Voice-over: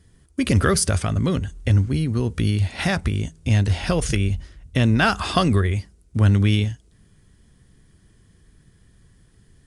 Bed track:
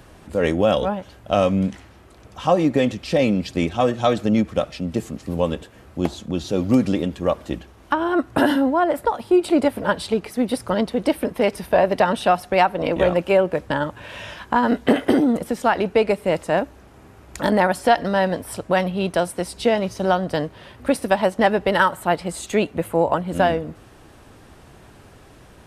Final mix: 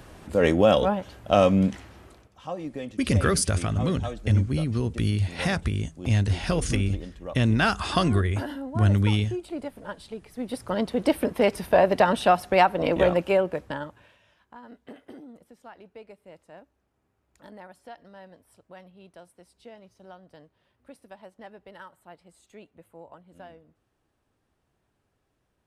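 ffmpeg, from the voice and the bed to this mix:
ffmpeg -i stem1.wav -i stem2.wav -filter_complex "[0:a]adelay=2600,volume=-4dB[link_01];[1:a]volume=14dB,afade=type=out:start_time=2.06:duration=0.23:silence=0.158489,afade=type=in:start_time=10.27:duration=0.87:silence=0.188365,afade=type=out:start_time=12.97:duration=1.21:silence=0.0501187[link_02];[link_01][link_02]amix=inputs=2:normalize=0" out.wav

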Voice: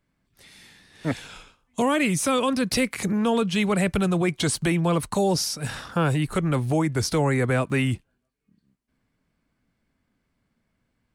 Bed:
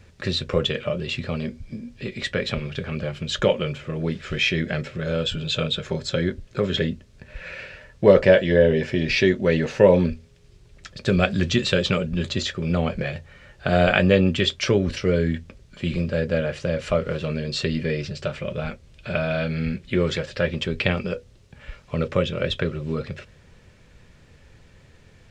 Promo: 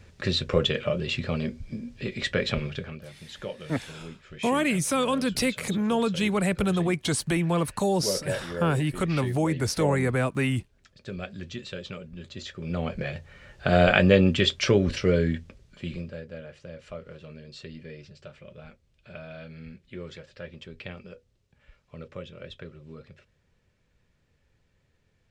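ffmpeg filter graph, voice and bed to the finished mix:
ffmpeg -i stem1.wav -i stem2.wav -filter_complex "[0:a]adelay=2650,volume=-2.5dB[link_01];[1:a]volume=14.5dB,afade=type=out:start_time=2.64:duration=0.37:silence=0.16788,afade=type=in:start_time=12.3:duration=1.25:silence=0.16788,afade=type=out:start_time=15.06:duration=1.18:silence=0.149624[link_02];[link_01][link_02]amix=inputs=2:normalize=0" out.wav

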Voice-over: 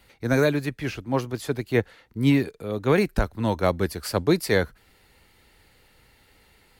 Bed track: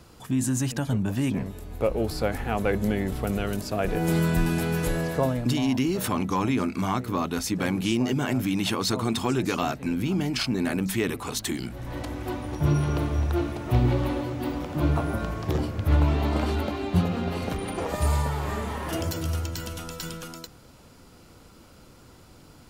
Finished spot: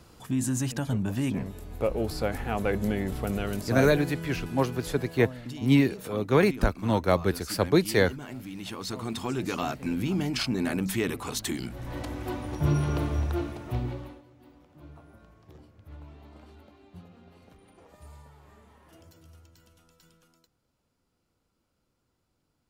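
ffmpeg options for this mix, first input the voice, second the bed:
ffmpeg -i stem1.wav -i stem2.wav -filter_complex "[0:a]adelay=3450,volume=-1dB[link_01];[1:a]volume=9.5dB,afade=type=out:start_time=3.81:duration=0.31:silence=0.266073,afade=type=in:start_time=8.52:duration=1.47:silence=0.251189,afade=type=out:start_time=13.12:duration=1.1:silence=0.0668344[link_02];[link_01][link_02]amix=inputs=2:normalize=0" out.wav

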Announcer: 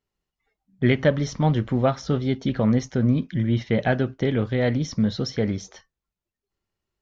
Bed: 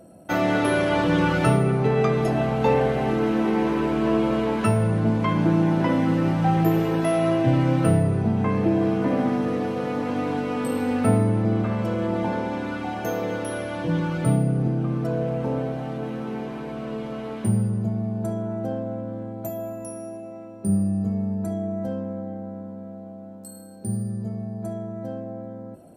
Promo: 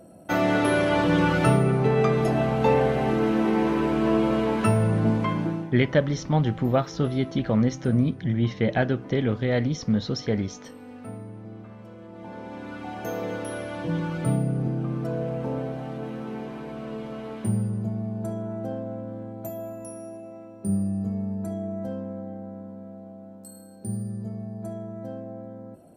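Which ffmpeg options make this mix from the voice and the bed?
ffmpeg -i stem1.wav -i stem2.wav -filter_complex "[0:a]adelay=4900,volume=-1.5dB[link_01];[1:a]volume=15dB,afade=type=out:start_time=5.11:duration=0.6:silence=0.11885,afade=type=in:start_time=12.13:duration=1.1:silence=0.16788[link_02];[link_01][link_02]amix=inputs=2:normalize=0" out.wav

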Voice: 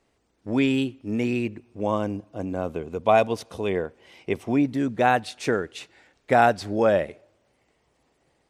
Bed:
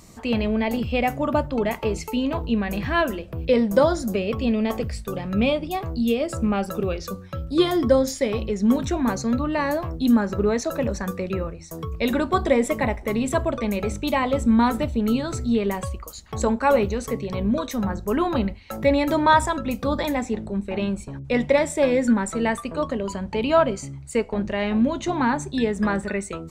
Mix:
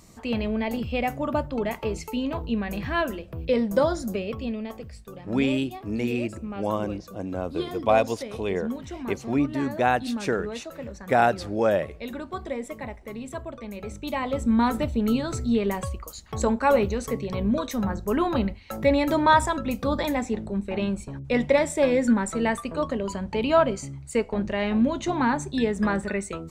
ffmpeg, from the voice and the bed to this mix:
ffmpeg -i stem1.wav -i stem2.wav -filter_complex "[0:a]adelay=4800,volume=-2dB[link_01];[1:a]volume=7dB,afade=type=out:start_time=4.08:duration=0.66:silence=0.375837,afade=type=in:start_time=13.71:duration=1.15:silence=0.281838[link_02];[link_01][link_02]amix=inputs=2:normalize=0" out.wav

